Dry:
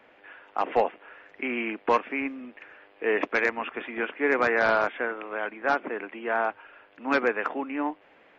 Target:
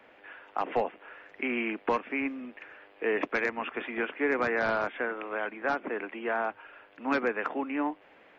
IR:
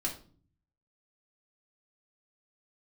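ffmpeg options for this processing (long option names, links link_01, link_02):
-filter_complex "[0:a]acrossover=split=280[link_01][link_02];[link_02]acompressor=threshold=-29dB:ratio=2[link_03];[link_01][link_03]amix=inputs=2:normalize=0"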